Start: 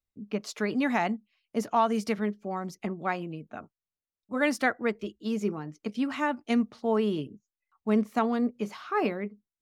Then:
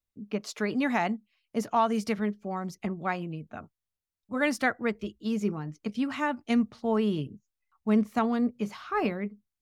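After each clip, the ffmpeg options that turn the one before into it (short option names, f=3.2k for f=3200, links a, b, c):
-af "asubboost=boost=2.5:cutoff=180"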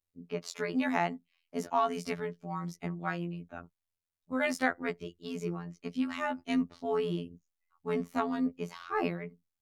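-af "afftfilt=real='hypot(re,im)*cos(PI*b)':imag='0':win_size=2048:overlap=0.75"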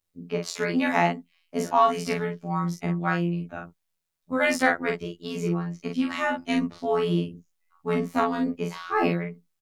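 -filter_complex "[0:a]asplit=2[a][b];[b]adelay=41,volume=-4dB[c];[a][c]amix=inputs=2:normalize=0,volume=7dB"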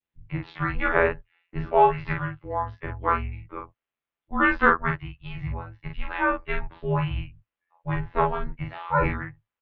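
-af "adynamicequalizer=threshold=0.0112:dfrequency=1500:dqfactor=1.4:tfrequency=1500:tqfactor=1.4:attack=5:release=100:ratio=0.375:range=4:mode=boostabove:tftype=bell,highpass=f=230:t=q:w=0.5412,highpass=f=230:t=q:w=1.307,lowpass=f=3.4k:t=q:w=0.5176,lowpass=f=3.4k:t=q:w=0.7071,lowpass=f=3.4k:t=q:w=1.932,afreqshift=-280,volume=-1dB"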